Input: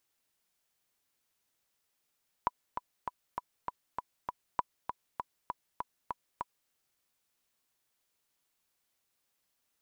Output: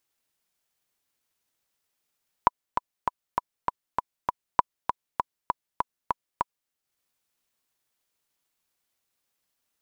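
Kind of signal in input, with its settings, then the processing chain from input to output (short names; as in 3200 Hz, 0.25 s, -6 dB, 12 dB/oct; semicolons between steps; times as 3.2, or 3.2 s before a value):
metronome 198 bpm, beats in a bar 7, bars 2, 986 Hz, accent 7 dB -14.5 dBFS
transient shaper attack +11 dB, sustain -6 dB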